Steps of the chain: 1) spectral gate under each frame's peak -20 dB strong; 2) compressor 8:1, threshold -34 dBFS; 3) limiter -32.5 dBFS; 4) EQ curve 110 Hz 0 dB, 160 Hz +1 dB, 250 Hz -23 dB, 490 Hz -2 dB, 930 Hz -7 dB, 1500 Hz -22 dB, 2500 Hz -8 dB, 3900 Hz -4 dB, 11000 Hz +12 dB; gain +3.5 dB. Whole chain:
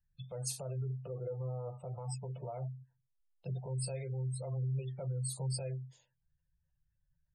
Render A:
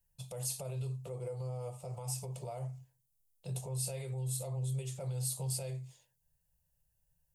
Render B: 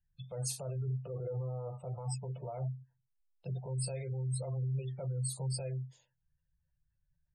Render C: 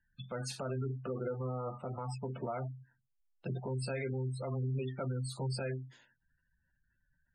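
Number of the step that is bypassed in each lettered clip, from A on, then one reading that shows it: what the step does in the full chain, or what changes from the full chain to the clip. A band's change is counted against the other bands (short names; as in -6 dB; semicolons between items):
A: 1, 8 kHz band +4.5 dB; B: 2, mean gain reduction 5.0 dB; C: 4, crest factor change -5.5 dB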